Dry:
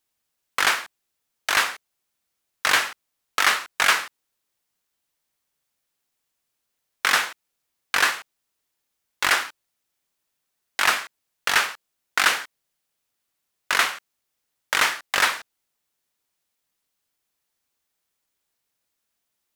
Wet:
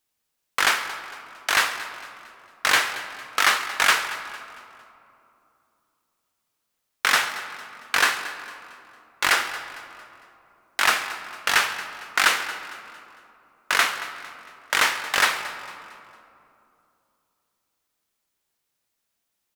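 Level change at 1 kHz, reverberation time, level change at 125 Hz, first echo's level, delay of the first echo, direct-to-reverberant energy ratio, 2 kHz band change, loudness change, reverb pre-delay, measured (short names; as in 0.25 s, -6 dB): +1.0 dB, 2.8 s, n/a, -16.0 dB, 0.227 s, 8.0 dB, +0.5 dB, -0.5 dB, 8 ms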